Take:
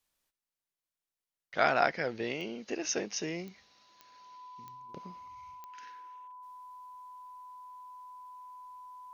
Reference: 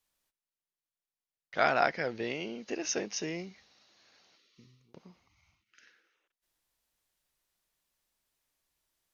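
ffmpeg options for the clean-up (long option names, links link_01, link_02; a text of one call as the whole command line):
ffmpeg -i in.wav -af "adeclick=threshold=4,bandreject=frequency=1000:width=30,asetnsamples=nb_out_samples=441:pad=0,asendcmd='4.89 volume volume -5.5dB',volume=0dB" out.wav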